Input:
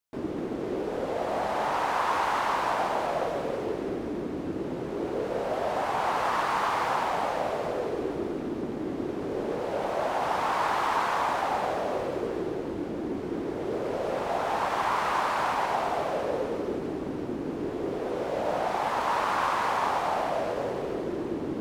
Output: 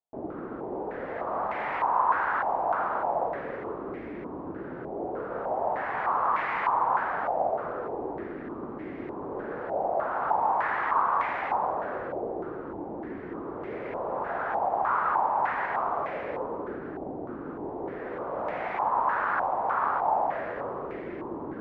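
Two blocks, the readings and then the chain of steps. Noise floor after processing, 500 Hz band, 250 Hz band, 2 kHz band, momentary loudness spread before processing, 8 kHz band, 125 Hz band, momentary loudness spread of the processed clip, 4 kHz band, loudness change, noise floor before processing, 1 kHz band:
−38 dBFS, −3.0 dB, −5.5 dB, 0.0 dB, 7 LU, below −30 dB, −6.0 dB, 12 LU, below −15 dB, −0.5 dB, −34 dBFS, +1.0 dB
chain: low-pass on a step sequencer 3.3 Hz 750–2,100 Hz
level −6 dB

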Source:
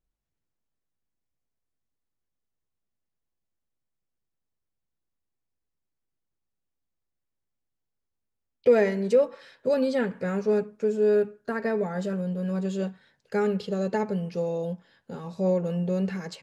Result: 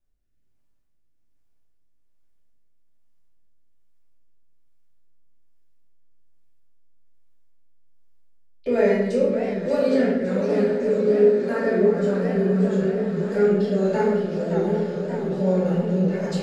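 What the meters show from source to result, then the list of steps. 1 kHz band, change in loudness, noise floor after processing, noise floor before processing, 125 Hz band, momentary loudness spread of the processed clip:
+3.5 dB, +5.0 dB, −60 dBFS, −83 dBFS, +6.0 dB, 5 LU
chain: in parallel at 0 dB: downward compressor, threshold −32 dBFS, peak gain reduction 16.5 dB
on the sum: feedback delay with all-pass diffusion 699 ms, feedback 71%, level −10 dB
rotating-speaker cabinet horn 1.2 Hz
rectangular room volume 300 cubic metres, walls mixed, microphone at 2.6 metres
feedback echo with a swinging delay time 573 ms, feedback 73%, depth 210 cents, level −9.5 dB
level −6 dB

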